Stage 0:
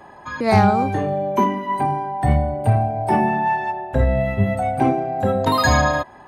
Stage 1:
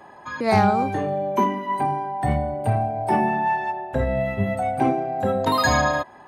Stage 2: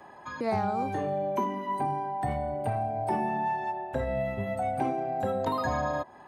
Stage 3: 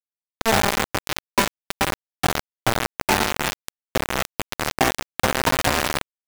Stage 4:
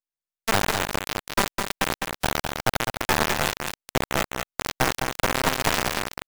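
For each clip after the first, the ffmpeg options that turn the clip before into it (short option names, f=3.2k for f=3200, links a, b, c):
-af "lowshelf=f=84:g=-11,volume=-2dB"
-filter_complex "[0:a]acrossover=split=490|1200|3300[a][b][c][d];[a]acompressor=threshold=-28dB:ratio=4[e];[b]acompressor=threshold=-25dB:ratio=4[f];[c]acompressor=threshold=-42dB:ratio=4[g];[d]acompressor=threshold=-50dB:ratio=4[h];[e][f][g][h]amix=inputs=4:normalize=0,volume=-4dB"
-af "acrusher=bits=3:mix=0:aa=0.000001,volume=8.5dB"
-af "aeval=exprs='max(val(0),0)':c=same,aecho=1:1:206:0.531" -ar 44100 -c:a aac -b:a 128k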